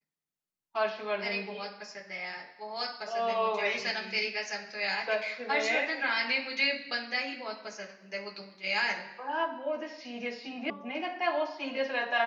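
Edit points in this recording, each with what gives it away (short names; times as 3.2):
10.7 sound cut off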